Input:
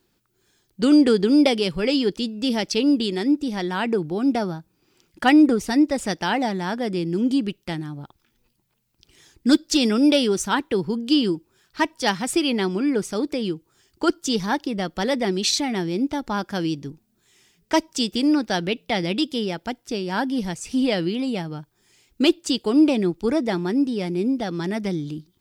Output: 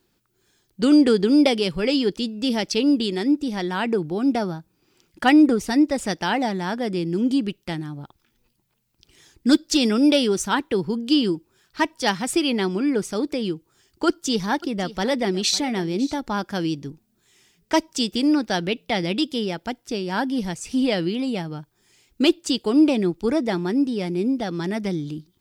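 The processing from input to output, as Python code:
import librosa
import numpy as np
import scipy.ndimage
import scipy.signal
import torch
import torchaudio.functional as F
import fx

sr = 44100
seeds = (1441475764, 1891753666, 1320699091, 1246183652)

y = fx.echo_single(x, sr, ms=552, db=-18.0, at=(14.07, 16.19))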